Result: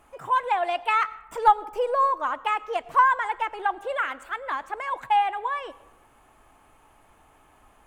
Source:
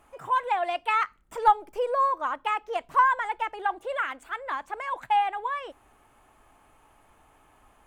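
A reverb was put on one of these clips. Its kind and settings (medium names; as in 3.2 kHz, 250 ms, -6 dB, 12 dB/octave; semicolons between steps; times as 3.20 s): algorithmic reverb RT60 1 s, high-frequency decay 0.45×, pre-delay 60 ms, DRR 19 dB; trim +2 dB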